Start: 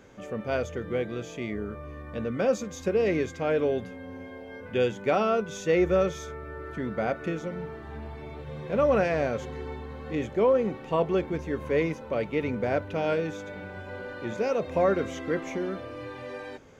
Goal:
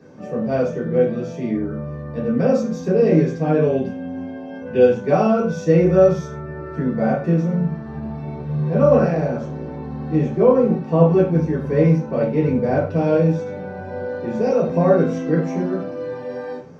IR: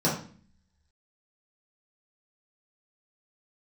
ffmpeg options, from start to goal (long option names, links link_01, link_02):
-filter_complex "[0:a]asettb=1/sr,asplit=3[link_01][link_02][link_03];[link_01]atrim=end=3.564[link_04];[link_02]atrim=start=3.56:end=4.81,asetpts=PTS-STARTPTS,afade=type=in:duration=0.004:curve=qsin,afade=type=out:start_time=1.246:duration=0.004:curve=qsin,equalizer=frequency=2800:width=4.2:gain=8[link_05];[link_03]atrim=start=4.806[link_06];[link_04][link_05]acrossfade=duration=0.004:curve1=hsin:curve2=qsin[link_07];[link_07][link_06]acrossfade=duration=0.004:curve1=qsin:curve2=hsin,asplit=3[link_08][link_09][link_10];[link_08]afade=type=out:start_time=8.96:duration=0.02[link_11];[link_09]tremolo=f=120:d=0.857,afade=type=in:start_time=8.96:duration=0.02,afade=type=out:start_time=9.81:duration=0.02[link_12];[link_10]afade=type=in:start_time=9.81:duration=0.02[link_13];[link_11][link_12][link_13]amix=inputs=3:normalize=0[link_14];[1:a]atrim=start_sample=2205,atrim=end_sample=6174[link_15];[link_14][link_15]afir=irnorm=-1:irlink=0,volume=-9dB"